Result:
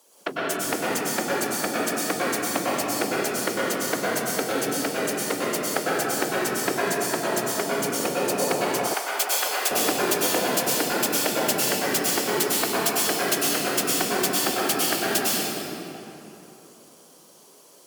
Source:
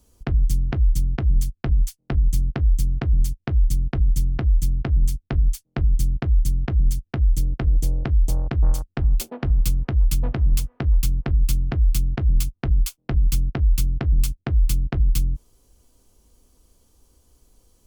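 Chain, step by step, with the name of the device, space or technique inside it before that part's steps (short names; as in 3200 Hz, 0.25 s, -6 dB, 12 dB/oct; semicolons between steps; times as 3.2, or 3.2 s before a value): whispering ghost (whisperiser; HPF 400 Hz 24 dB/oct; reverb RT60 3.3 s, pre-delay 95 ms, DRR -7.5 dB); 8.94–9.71 HPF 790 Hz 12 dB/oct; gain +6.5 dB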